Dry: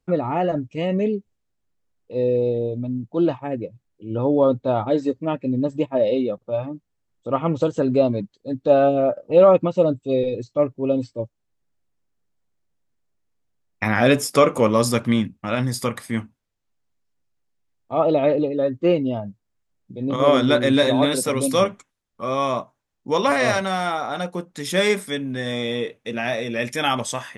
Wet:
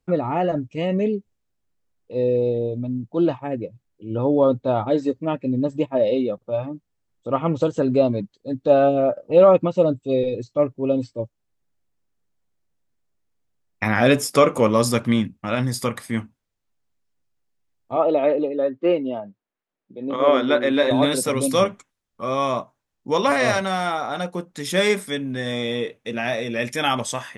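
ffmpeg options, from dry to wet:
-filter_complex "[0:a]asettb=1/sr,asplit=3[a][b][c];[a]atrim=end=17.964[d];[b]atrim=start=17.96:end=20.91,asetpts=PTS-STARTPTS,afade=t=in:d=0.004:c=qsin,afade=t=out:st=2.946:d=0.004:c=qsin,acrossover=split=230 3600:gain=0.0891 1 0.178[e][f][g];[e][f][g]amix=inputs=3:normalize=0[h];[c]atrim=start=20.906[i];[d][h]acrossfade=d=0.004:c1=hsin:c2=qsin[j];[j][i]acrossfade=d=0.004:c1=qsin:c2=hsin"

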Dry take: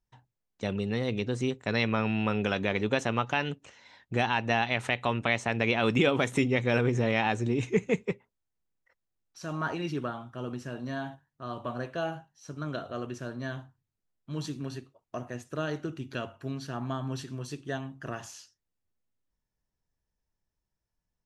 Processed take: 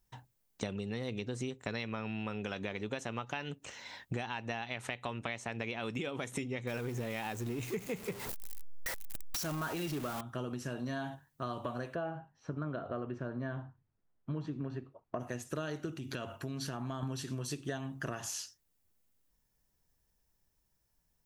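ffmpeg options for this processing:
-filter_complex "[0:a]asettb=1/sr,asplit=3[a][b][c];[a]atrim=end=6.674[d];[b]atrim=start=6.67:end=10.21,asetpts=PTS-STARTPTS,afade=t=in:d=0.004:c=qsin,afade=t=out:st=3.536:d=0.004:c=qsin,aeval=exprs='val(0)+0.5*0.02*sgn(val(0))':c=same[e];[c]atrim=start=10.206[f];[d][e]acrossfade=d=0.004:c1=hsin:c2=qsin[g];[g][f]acrossfade=d=0.004:c1=qsin:c2=hsin,asplit=3[h][i][j];[h]afade=t=out:st=11.94:d=0.02[k];[i]lowpass=1.6k,afade=t=in:st=11.94:d=0.02,afade=t=out:st=15.19:d=0.02[l];[j]afade=t=in:st=15.19:d=0.02[m];[k][l][m]amix=inputs=3:normalize=0,asettb=1/sr,asplit=3[n][o][p];[n]atrim=end=15.944[q];[o]atrim=start=15.94:end=17.03,asetpts=PTS-STARTPTS,afade=t=in:d=0.004:c=qsin,afade=t=out:st=1.086:d=0.004:c=qsin,acompressor=threshold=-41dB:ratio=3:attack=3.2:release=140:knee=1:detection=peak[r];[p]atrim=start=17.026[s];[q][r]acrossfade=d=0.004:c1=hsin:c2=qsin[t];[t][s]acrossfade=d=0.004:c1=qsin:c2=hsin,highshelf=f=8.5k:g=12,acompressor=threshold=-40dB:ratio=16,volume=6dB"

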